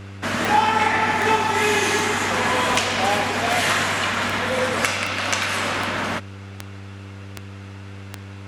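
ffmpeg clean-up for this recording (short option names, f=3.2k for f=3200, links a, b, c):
-af "adeclick=t=4,bandreject=f=98.3:t=h:w=4,bandreject=f=196.6:t=h:w=4,bandreject=f=294.9:t=h:w=4,bandreject=f=393.2:t=h:w=4,bandreject=f=491.5:t=h:w=4"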